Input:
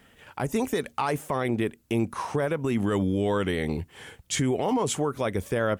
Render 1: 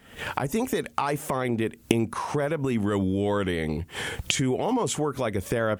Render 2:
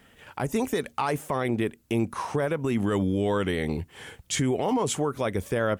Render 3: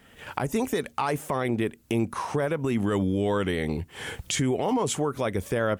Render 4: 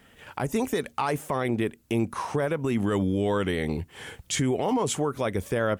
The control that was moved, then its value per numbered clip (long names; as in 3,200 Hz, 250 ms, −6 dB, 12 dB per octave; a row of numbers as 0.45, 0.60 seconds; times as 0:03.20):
camcorder AGC, rising by: 80, 5.2, 32, 13 dB per second